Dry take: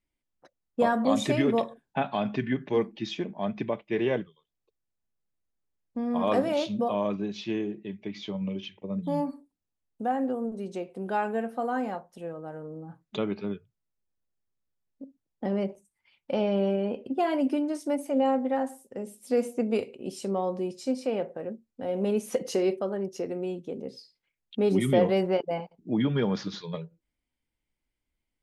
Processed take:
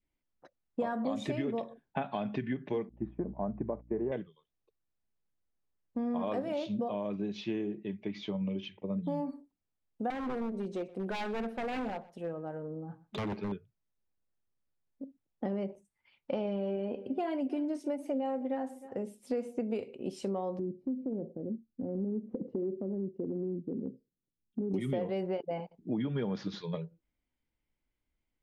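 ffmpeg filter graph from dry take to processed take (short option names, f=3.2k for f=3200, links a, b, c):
-filter_complex "[0:a]asettb=1/sr,asplit=3[a][b][c];[a]atrim=end=2.894[d];[b]atrim=start=2.89:end=4.12,asetpts=PTS-STARTPTS,afade=t=in:d=0.004:c=qsin,afade=t=out:st=1.226:d=0.004:c=qsin,lowpass=f=1.2k:w=0.5412,lowpass=f=1.2k:w=1.3066,aeval=exprs='val(0)+0.00562*(sin(2*PI*60*n/s)+sin(2*PI*2*60*n/s)/2+sin(2*PI*3*60*n/s)/3+sin(2*PI*4*60*n/s)/4+sin(2*PI*5*60*n/s)/5)':c=same,agate=range=-33dB:threshold=-39dB:ratio=3:release=100:detection=peak[e];[c]atrim=start=4.116[f];[d][e]acrossfade=d=0.004:c1=hsin:c2=qsin[g];[g][f]acrossfade=d=0.004:c1=qsin:c2=hsin,asettb=1/sr,asplit=3[h][i][j];[h]atrim=end=10.104[k];[i]atrim=start=10.1:end=13.52,asetpts=PTS-STARTPTS,afade=t=in:d=0.004:c=qsin,afade=t=out:st=3.416:d=0.004:c=qsin,aeval=exprs='0.0398*(abs(mod(val(0)/0.0398+3,4)-2)-1)':c=same,aecho=1:1:124:0.0944,atrim=end_sample=150822[l];[j]atrim=start=13.516[m];[k][l]acrossfade=d=0.004:c1=hsin:c2=qsin[n];[n][m]acrossfade=d=0.004:c1=qsin:c2=hsin,asettb=1/sr,asplit=3[o][p][q];[o]atrim=end=16.454[r];[p]atrim=start=16.45:end=18.97,asetpts=PTS-STARTPTS,afade=t=in:d=0.004:c=qsin,afade=t=out:st=2.516:d=0.004:c=qsin,aphaser=in_gain=1:out_gain=1:delay=3.5:decay=0.21:speed=1.2:type=triangular,aecho=1:1:311:0.075,atrim=end_sample=111132[s];[q]atrim=start=18.966[t];[r][s]acrossfade=d=0.004:c1=hsin:c2=qsin[u];[u][t]acrossfade=d=0.004:c1=qsin:c2=hsin,asettb=1/sr,asplit=3[v][w][x];[v]atrim=end=20.594[y];[w]atrim=start=20.59:end=24.74,asetpts=PTS-STARTPTS,afade=t=in:d=0.004:c=qsin,afade=t=out:st=4.146:d=0.004:c=qsin,lowpass=f=280:t=q:w=1.6,acompressor=threshold=-30dB:ratio=2.5:attack=3.2:release=140:knee=1:detection=peak[z];[x]atrim=start=24.736[aa];[y][z]acrossfade=d=0.004:c1=hsin:c2=qsin[ab];[ab][aa]acrossfade=d=0.004:c1=qsin:c2=hsin,lowpass=f=2.7k:p=1,acompressor=threshold=-30dB:ratio=6,adynamicequalizer=threshold=0.00224:dfrequency=1200:dqfactor=1.5:tfrequency=1200:tqfactor=1.5:attack=5:release=100:ratio=0.375:range=2.5:mode=cutabove:tftype=bell"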